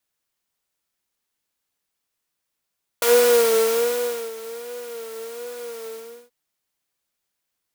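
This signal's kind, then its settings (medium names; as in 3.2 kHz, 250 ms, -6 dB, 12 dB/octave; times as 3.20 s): synth patch with vibrato A#4, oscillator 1 triangle, interval 0 st, oscillator 2 level -13 dB, noise -8.5 dB, filter highpass, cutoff 260 Hz, Q 1, filter envelope 2 oct, filter decay 0.10 s, filter sustain 40%, attack 3 ms, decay 1.29 s, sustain -20 dB, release 0.45 s, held 2.83 s, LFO 1.3 Hz, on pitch 69 cents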